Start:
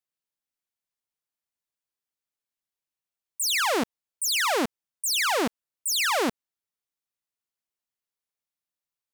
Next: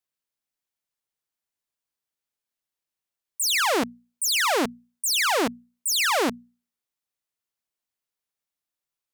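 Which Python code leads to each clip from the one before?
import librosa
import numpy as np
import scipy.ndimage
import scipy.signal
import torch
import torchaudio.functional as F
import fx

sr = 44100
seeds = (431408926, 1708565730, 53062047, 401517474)

y = fx.hum_notches(x, sr, base_hz=60, count=4)
y = y * 10.0 ** (2.0 / 20.0)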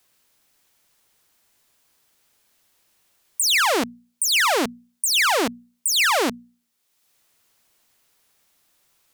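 y = fx.band_squash(x, sr, depth_pct=70)
y = y * 10.0 ** (2.5 / 20.0)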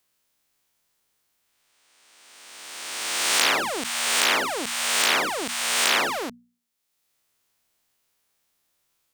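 y = fx.spec_swells(x, sr, rise_s=2.1)
y = y * 10.0 ** (-11.0 / 20.0)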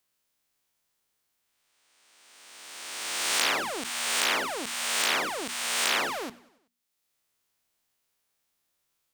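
y = fx.echo_feedback(x, sr, ms=95, feedback_pct=57, wet_db=-22.0)
y = y * 10.0 ** (-5.0 / 20.0)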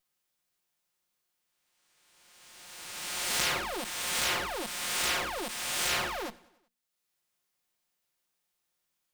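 y = fx.lower_of_two(x, sr, delay_ms=5.6)
y = y * 10.0 ** (-2.0 / 20.0)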